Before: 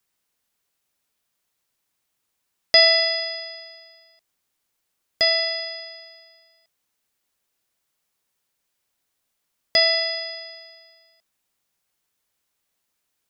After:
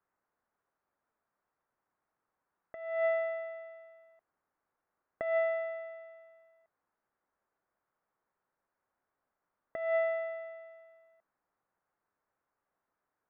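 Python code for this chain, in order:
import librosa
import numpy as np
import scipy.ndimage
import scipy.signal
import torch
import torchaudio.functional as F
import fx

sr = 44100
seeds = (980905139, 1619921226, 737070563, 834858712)

y = scipy.signal.sosfilt(scipy.signal.cheby2(4, 60, 4900.0, 'lowpass', fs=sr, output='sos'), x)
y = fx.low_shelf(y, sr, hz=320.0, db=-10.0)
y = fx.over_compress(y, sr, threshold_db=-30.0, ratio=-0.5)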